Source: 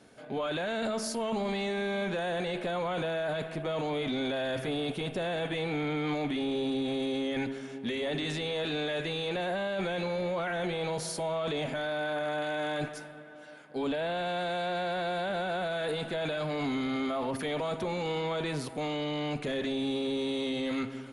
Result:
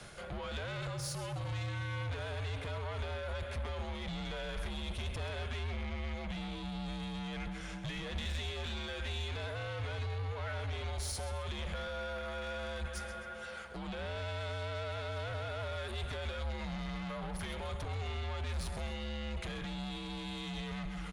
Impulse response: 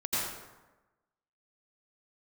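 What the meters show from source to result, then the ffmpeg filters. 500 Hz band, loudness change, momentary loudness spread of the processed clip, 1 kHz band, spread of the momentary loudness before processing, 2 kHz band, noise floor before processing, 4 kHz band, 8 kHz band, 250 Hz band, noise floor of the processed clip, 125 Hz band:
−11.5 dB, −7.5 dB, 3 LU, −8.5 dB, 3 LU, −6.5 dB, −45 dBFS, −6.0 dB, −3.0 dB, −11.0 dB, −44 dBFS, +1.5 dB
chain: -filter_complex "[0:a]acrossover=split=230[link_01][link_02];[link_02]acompressor=threshold=-42dB:ratio=6[link_03];[link_01][link_03]amix=inputs=2:normalize=0,asplit=2[link_04][link_05];[link_05]aecho=0:1:131|262|393|524:0.251|0.098|0.0382|0.0149[link_06];[link_04][link_06]amix=inputs=2:normalize=0,asoftclip=type=tanh:threshold=-39.5dB,afreqshift=-83,areverse,acompressor=mode=upward:threshold=-47dB:ratio=2.5,areverse,equalizer=frequency=290:width_type=o:width=1.4:gain=-13,volume=8dB"

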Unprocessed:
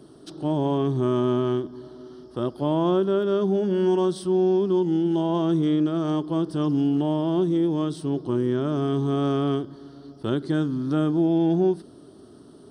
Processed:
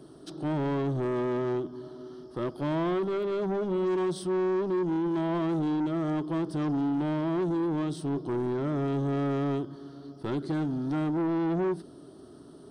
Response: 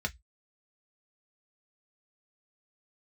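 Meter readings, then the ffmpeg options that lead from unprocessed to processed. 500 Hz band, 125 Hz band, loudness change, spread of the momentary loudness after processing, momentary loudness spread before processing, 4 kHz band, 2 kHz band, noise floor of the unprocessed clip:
−6.0 dB, −5.5 dB, −6.0 dB, 9 LU, 9 LU, −8.0 dB, +0.5 dB, −48 dBFS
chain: -filter_complex "[0:a]asoftclip=type=tanh:threshold=-24dB,asplit=2[link_01][link_02];[1:a]atrim=start_sample=2205[link_03];[link_02][link_03]afir=irnorm=-1:irlink=0,volume=-19.5dB[link_04];[link_01][link_04]amix=inputs=2:normalize=0,volume=-1.5dB"

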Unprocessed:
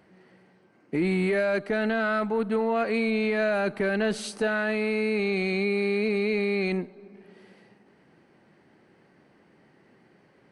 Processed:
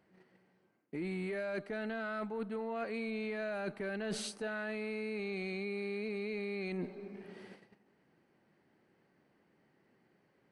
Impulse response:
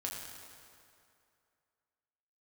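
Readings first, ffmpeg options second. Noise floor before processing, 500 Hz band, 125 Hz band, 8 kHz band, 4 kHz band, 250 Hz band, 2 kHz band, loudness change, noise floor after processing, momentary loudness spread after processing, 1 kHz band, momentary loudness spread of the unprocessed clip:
−61 dBFS, −13.0 dB, −12.0 dB, −6.0 dB, −10.5 dB, −12.5 dB, −13.0 dB, −13.0 dB, −73 dBFS, 7 LU, −13.0 dB, 4 LU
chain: -af "agate=range=-13dB:threshold=-53dB:ratio=16:detection=peak,areverse,acompressor=threshold=-37dB:ratio=8,areverse,volume=1dB"

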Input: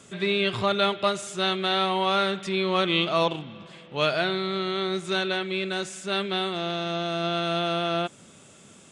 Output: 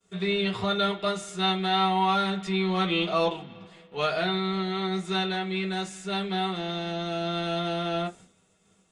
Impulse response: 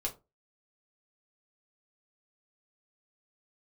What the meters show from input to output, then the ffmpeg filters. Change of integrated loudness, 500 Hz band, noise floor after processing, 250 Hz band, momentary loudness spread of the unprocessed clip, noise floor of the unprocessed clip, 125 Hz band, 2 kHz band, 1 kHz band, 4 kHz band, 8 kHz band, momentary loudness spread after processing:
−1.5 dB, −3.0 dB, −66 dBFS, +1.0 dB, 6 LU, −52 dBFS, +1.5 dB, −3.5 dB, 0.0 dB, −2.5 dB, −4.0 dB, 7 LU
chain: -filter_complex "[0:a]agate=range=-33dB:threshold=-42dB:ratio=3:detection=peak[link_01];[1:a]atrim=start_sample=2205,asetrate=74970,aresample=44100[link_02];[link_01][link_02]afir=irnorm=-1:irlink=0"

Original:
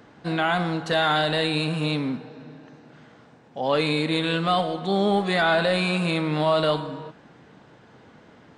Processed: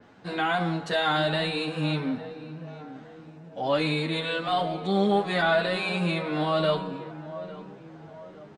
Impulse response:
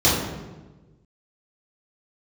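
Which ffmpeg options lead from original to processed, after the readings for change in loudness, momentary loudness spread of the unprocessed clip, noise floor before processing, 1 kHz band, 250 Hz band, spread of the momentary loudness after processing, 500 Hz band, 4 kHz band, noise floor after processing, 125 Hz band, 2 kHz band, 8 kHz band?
−3.0 dB, 10 LU, −52 dBFS, −2.5 dB, −3.0 dB, 20 LU, −3.0 dB, −3.5 dB, −48 dBFS, −3.0 dB, −3.0 dB, can't be measured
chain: -filter_complex "[0:a]adynamicequalizer=threshold=0.00501:dfrequency=9200:dqfactor=0.74:tfrequency=9200:tqfactor=0.74:attack=5:release=100:ratio=0.375:range=2.5:mode=cutabove:tftype=bell,asplit=2[link_01][link_02];[link_02]adelay=854,lowpass=frequency=1200:poles=1,volume=-14dB,asplit=2[link_03][link_04];[link_04]adelay=854,lowpass=frequency=1200:poles=1,volume=0.54,asplit=2[link_05][link_06];[link_06]adelay=854,lowpass=frequency=1200:poles=1,volume=0.54,asplit=2[link_07][link_08];[link_08]adelay=854,lowpass=frequency=1200:poles=1,volume=0.54,asplit=2[link_09][link_10];[link_10]adelay=854,lowpass=frequency=1200:poles=1,volume=0.54[link_11];[link_01][link_03][link_05][link_07][link_09][link_11]amix=inputs=6:normalize=0,asplit=2[link_12][link_13];[link_13]adelay=9.3,afreqshift=1.5[link_14];[link_12][link_14]amix=inputs=2:normalize=1"

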